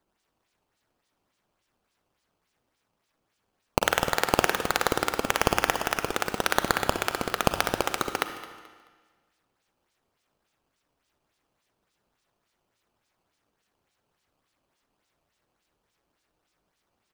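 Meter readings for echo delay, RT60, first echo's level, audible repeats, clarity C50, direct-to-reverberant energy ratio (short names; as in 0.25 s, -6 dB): 0.216 s, 1.5 s, -18.0 dB, 2, 8.5 dB, 8.0 dB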